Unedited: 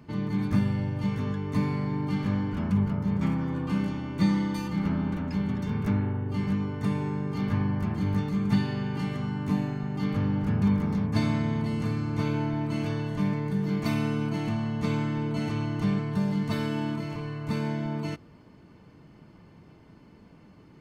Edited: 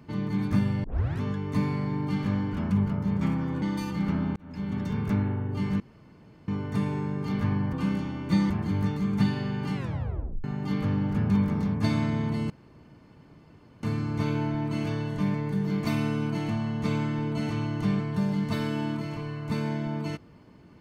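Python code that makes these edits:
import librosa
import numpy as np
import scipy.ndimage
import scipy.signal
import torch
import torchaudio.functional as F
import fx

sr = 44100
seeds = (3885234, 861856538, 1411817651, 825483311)

y = fx.edit(x, sr, fx.tape_start(start_s=0.84, length_s=0.37),
    fx.move(start_s=3.62, length_s=0.77, to_s=7.82),
    fx.fade_in_span(start_s=5.13, length_s=0.45),
    fx.insert_room_tone(at_s=6.57, length_s=0.68),
    fx.tape_stop(start_s=9.07, length_s=0.69),
    fx.insert_room_tone(at_s=11.82, length_s=1.33), tone=tone)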